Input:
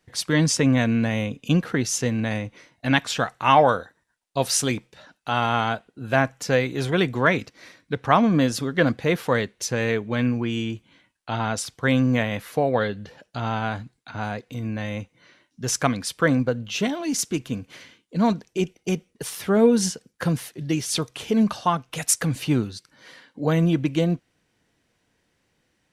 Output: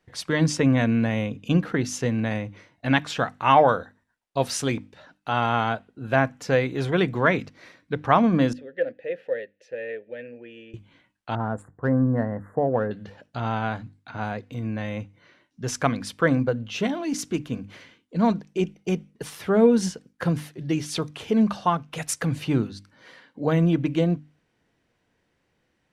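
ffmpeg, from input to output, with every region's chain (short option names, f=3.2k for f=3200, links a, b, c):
-filter_complex "[0:a]asettb=1/sr,asplit=3[a][b][c];[a]atrim=end=8.534[d];[b]atrim=start=8.53:end=10.74,asetpts=PTS-STARTPTS,afade=t=in:d=0.004:c=qsin,afade=t=out:st=2.206:d=0.004:c=qsin,asplit=3[e][f][g];[e]bandpass=f=530:t=q:w=8,volume=0dB[h];[f]bandpass=f=1.84k:t=q:w=8,volume=-6dB[i];[g]bandpass=f=2.48k:t=q:w=8,volume=-9dB[j];[h][i][j]amix=inputs=3:normalize=0,asoftclip=type=hard:threshold=-13.5dB[k];[c]atrim=start=10.736[l];[d][k]acrossfade=d=0.004:c1=hsin:c2=qsin[m];[m][l]acrossfade=d=0.004:c1=qsin:c2=hsin,asettb=1/sr,asplit=3[n][o][p];[n]atrim=end=11.354[q];[o]atrim=start=11.35:end=12.91,asetpts=PTS-STARTPTS,afade=t=in:d=0.004:c=qsin,afade=t=out:st=1.556:d=0.004:c=qsin,asuperstop=centerf=3800:order=20:qfactor=0.73,equalizer=f=3.1k:t=o:w=2.3:g=-10,adynamicsmooth=sensitivity=4:basefreq=3.9k[r];[p]atrim=start=12.906[s];[q][r]acrossfade=d=0.004:c1=hsin:c2=qsin[t];[t][s]acrossfade=d=0.004:c1=qsin:c2=hsin,highshelf=f=4.2k:g=-10.5,bandreject=f=50:t=h:w=6,bandreject=f=100:t=h:w=6,bandreject=f=150:t=h:w=6,bandreject=f=200:t=h:w=6,bandreject=f=250:t=h:w=6,bandreject=f=300:t=h:w=6"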